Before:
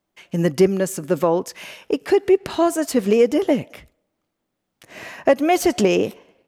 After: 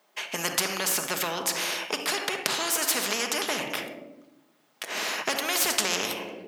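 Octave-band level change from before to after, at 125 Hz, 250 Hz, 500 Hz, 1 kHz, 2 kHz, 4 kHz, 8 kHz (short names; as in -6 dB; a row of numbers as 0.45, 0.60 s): -17.5, -17.5, -16.0, -6.0, +2.0, +6.5, +6.0 dB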